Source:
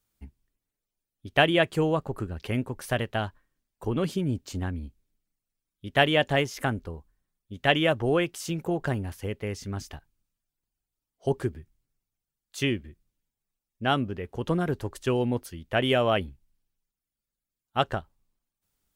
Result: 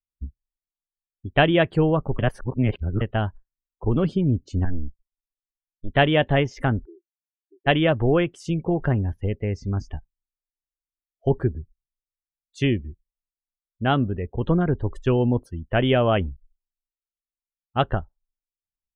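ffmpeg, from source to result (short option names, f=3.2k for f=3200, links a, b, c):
-filter_complex "[0:a]asettb=1/sr,asplit=3[a][b][c];[a]atrim=end=4.654[d];[b]atrim=start=4.65:end=5.89,asetpts=PTS-STARTPTS,afade=t=in:d=0.004:c=qsin,afade=t=out:st=1.236:d=0.004:c=qsin,aeval=exprs='max(val(0),0)':c=same[e];[c]atrim=start=5.886[f];[d][e]acrossfade=d=0.004:c1=hsin:c2=qsin[g];[g][f]acrossfade=d=0.004:c1=qsin:c2=hsin,asplit=3[h][i][j];[h]afade=t=out:st=6.84:d=0.02[k];[i]asuperpass=centerf=360:order=4:qfactor=6.6,afade=t=in:st=6.84:d=0.02,afade=t=out:st=7.66:d=0.02[l];[j]afade=t=in:st=7.66:d=0.02[m];[k][l][m]amix=inputs=3:normalize=0,asplit=3[n][o][p];[n]atrim=end=2.192[q];[o]atrim=start=2.188:end=3.012,asetpts=PTS-STARTPTS,areverse[r];[p]atrim=start=3.008[s];[q][r]acrossfade=d=0.004:c1=hsin:c2=hsin[t];[t][s]acrossfade=d=0.004:c1=hsin:c2=hsin,equalizer=f=97:t=o:w=2.1:g=-3.5,afftdn=nr=30:nf=-44,aemphasis=mode=reproduction:type=bsi,volume=2.5dB"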